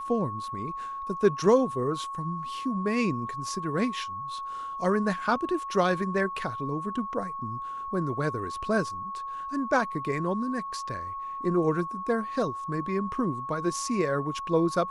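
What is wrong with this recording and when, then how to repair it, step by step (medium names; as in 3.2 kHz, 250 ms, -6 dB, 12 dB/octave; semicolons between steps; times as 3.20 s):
whine 1.1 kHz -33 dBFS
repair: band-stop 1.1 kHz, Q 30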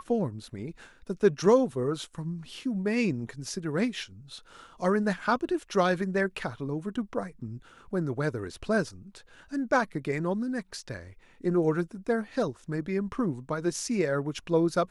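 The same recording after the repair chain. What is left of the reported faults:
nothing left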